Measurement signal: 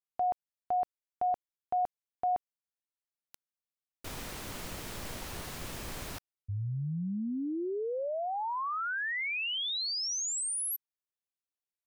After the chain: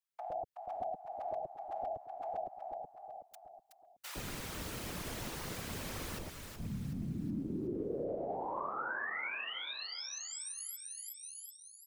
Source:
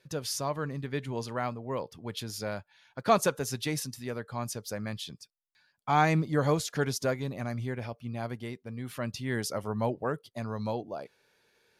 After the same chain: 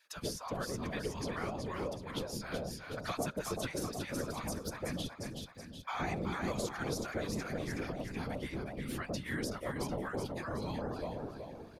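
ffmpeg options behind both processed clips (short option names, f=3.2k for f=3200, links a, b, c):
-filter_complex "[0:a]asplit=2[a][b];[b]aecho=0:1:372|744|1116|1488|1860:0.398|0.163|0.0669|0.0274|0.0112[c];[a][c]amix=inputs=2:normalize=0,afftfilt=real='hypot(re,im)*cos(2*PI*random(0))':imag='hypot(re,im)*sin(2*PI*random(1))':win_size=512:overlap=0.75,acrossover=split=180|550|1500[d][e][f][g];[d]acompressor=threshold=-50dB:ratio=4[h];[e]acompressor=threshold=-46dB:ratio=4[i];[f]acompressor=threshold=-47dB:ratio=4[j];[g]acompressor=threshold=-50dB:ratio=4[k];[h][i][j][k]amix=inputs=4:normalize=0,acrossover=split=820[l][m];[l]adelay=110[n];[n][m]amix=inputs=2:normalize=0,volume=6.5dB"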